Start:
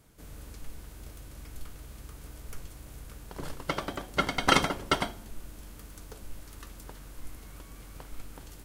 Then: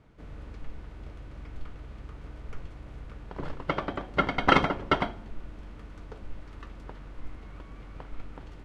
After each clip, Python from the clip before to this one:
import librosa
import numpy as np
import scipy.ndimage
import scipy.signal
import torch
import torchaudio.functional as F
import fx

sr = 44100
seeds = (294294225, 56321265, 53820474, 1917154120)

y = scipy.signal.sosfilt(scipy.signal.butter(2, 2400.0, 'lowpass', fs=sr, output='sos'), x)
y = fx.notch(y, sr, hz=1600.0, q=28.0)
y = y * librosa.db_to_amplitude(3.0)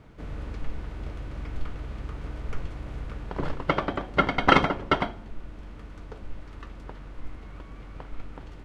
y = fx.rider(x, sr, range_db=10, speed_s=2.0)
y = y * librosa.db_to_amplitude(2.0)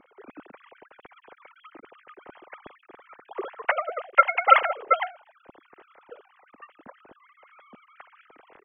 y = fx.sine_speech(x, sr)